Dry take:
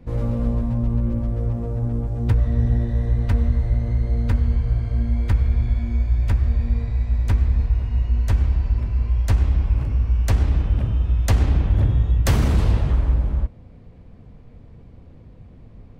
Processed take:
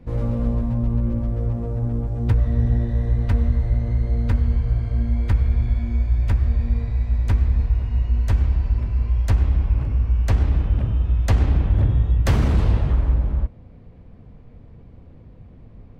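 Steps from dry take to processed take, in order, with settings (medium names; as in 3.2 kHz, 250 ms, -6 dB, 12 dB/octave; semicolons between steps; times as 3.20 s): treble shelf 5.7 kHz -4.5 dB, from 9.30 s -10.5 dB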